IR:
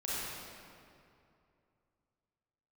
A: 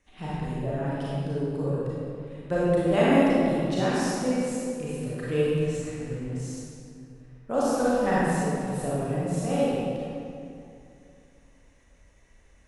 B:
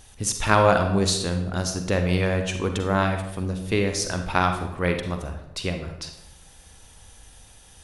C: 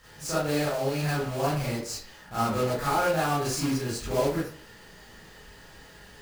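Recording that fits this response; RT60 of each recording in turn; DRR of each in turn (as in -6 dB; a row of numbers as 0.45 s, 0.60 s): A; 2.6 s, 0.85 s, 0.45 s; -9.0 dB, 5.5 dB, -9.5 dB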